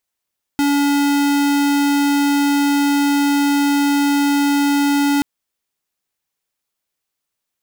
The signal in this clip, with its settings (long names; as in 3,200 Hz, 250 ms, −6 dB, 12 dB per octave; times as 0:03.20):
tone square 285 Hz −15.5 dBFS 4.63 s